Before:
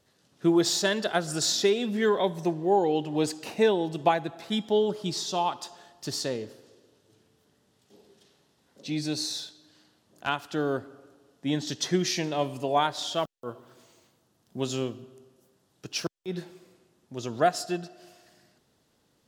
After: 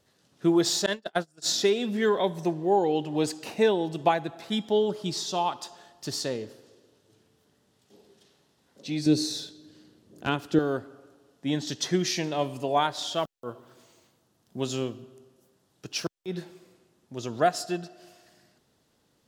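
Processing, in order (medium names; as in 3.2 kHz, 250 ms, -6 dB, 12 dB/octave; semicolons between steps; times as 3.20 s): 0.86–1.46 s: gate -25 dBFS, range -33 dB; 9.06–10.59 s: resonant low shelf 560 Hz +8.5 dB, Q 1.5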